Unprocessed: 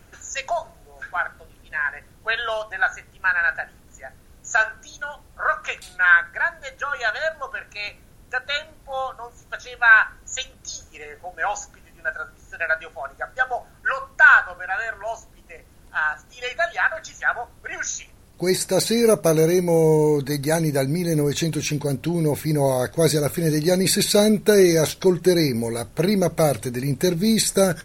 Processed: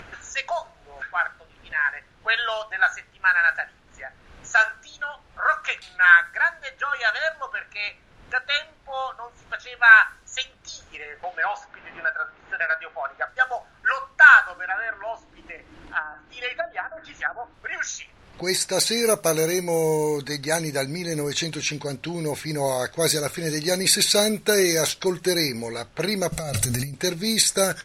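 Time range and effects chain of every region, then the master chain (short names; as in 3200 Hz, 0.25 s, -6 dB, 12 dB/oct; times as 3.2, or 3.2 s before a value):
11.23–13.28 overdrive pedal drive 11 dB, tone 4100 Hz, clips at -10 dBFS + tape spacing loss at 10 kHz 26 dB + three-band squash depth 70%
14.44–17.54 treble ducked by the level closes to 580 Hz, closed at -18.5 dBFS + bell 310 Hz +15 dB 0.24 oct
26.32–26.94 tone controls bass +13 dB, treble +7 dB + negative-ratio compressor -21 dBFS + comb 1.5 ms, depth 41%
whole clip: low-pass opened by the level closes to 2600 Hz, open at -13.5 dBFS; tilt shelf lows -6.5 dB, about 650 Hz; upward compressor, threshold -29 dBFS; gain -3 dB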